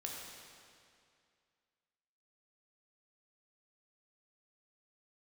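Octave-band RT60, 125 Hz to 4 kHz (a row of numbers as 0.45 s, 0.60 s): 2.3 s, 2.3 s, 2.3 s, 2.3 s, 2.2 s, 2.1 s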